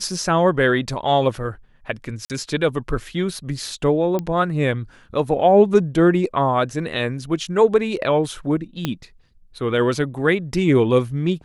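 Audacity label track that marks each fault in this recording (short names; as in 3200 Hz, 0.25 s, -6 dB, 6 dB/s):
2.250000	2.300000	gap 48 ms
4.190000	4.190000	pop -13 dBFS
8.850000	8.850000	pop -8 dBFS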